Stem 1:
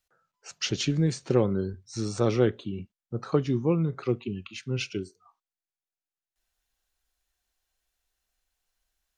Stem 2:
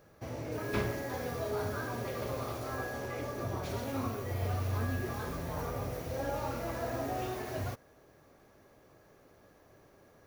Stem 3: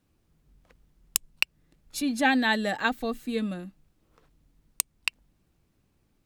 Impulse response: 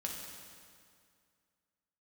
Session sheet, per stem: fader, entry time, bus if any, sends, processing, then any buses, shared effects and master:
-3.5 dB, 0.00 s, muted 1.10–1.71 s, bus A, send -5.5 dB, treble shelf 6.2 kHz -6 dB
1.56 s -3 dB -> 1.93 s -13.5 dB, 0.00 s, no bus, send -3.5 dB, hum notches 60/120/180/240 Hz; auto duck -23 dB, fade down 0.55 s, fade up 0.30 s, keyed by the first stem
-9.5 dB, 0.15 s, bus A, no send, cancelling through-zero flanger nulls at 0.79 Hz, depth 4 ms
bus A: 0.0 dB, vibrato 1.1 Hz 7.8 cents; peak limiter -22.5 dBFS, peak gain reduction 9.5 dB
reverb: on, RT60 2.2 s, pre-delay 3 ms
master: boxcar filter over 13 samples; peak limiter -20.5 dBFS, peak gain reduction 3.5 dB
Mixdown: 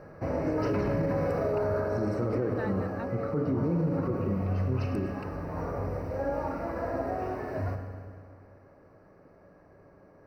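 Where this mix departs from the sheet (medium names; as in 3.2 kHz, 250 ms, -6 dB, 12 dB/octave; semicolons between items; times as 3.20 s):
stem 2 -3.0 dB -> +7.5 dB; reverb return +7.5 dB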